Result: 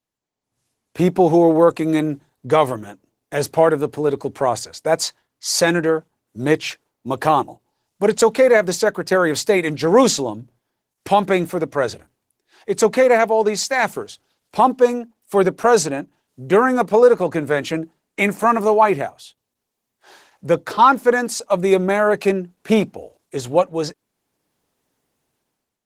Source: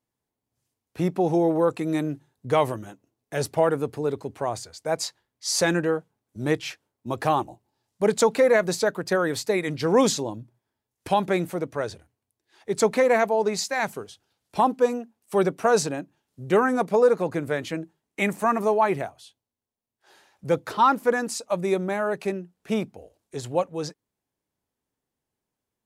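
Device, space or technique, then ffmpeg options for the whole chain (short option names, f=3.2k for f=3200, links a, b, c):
video call: -af "highpass=f=160:p=1,dynaudnorm=f=150:g=7:m=16dB,volume=-1dB" -ar 48000 -c:a libopus -b:a 16k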